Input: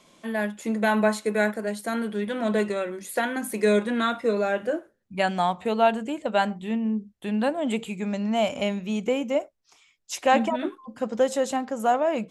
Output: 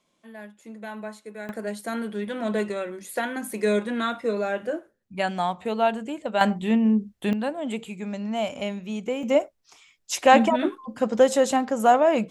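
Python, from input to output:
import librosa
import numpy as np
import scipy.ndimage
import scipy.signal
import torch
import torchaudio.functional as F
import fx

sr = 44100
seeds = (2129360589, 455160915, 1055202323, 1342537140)

y = fx.gain(x, sr, db=fx.steps((0.0, -14.5), (1.49, -2.0), (6.41, 6.0), (7.33, -3.5), (9.23, 4.5)))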